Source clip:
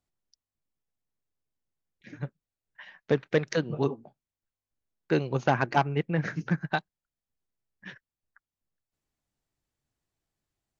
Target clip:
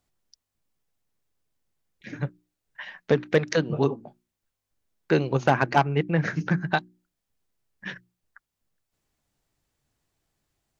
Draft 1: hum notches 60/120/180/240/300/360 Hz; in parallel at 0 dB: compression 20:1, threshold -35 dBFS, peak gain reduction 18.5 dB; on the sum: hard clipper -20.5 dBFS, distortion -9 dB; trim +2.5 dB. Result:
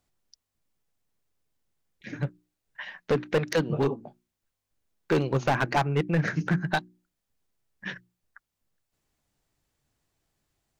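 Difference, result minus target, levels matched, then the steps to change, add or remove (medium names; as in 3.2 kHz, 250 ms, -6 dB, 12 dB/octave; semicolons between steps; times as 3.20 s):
hard clipper: distortion +31 dB
change: hard clipper -9.5 dBFS, distortion -40 dB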